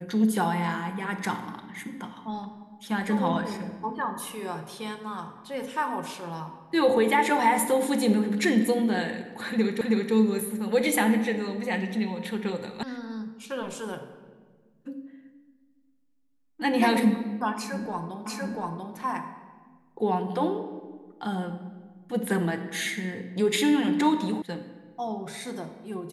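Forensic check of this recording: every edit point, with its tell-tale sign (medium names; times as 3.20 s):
9.81 s: repeat of the last 0.32 s
12.83 s: sound stops dead
18.26 s: repeat of the last 0.69 s
24.42 s: sound stops dead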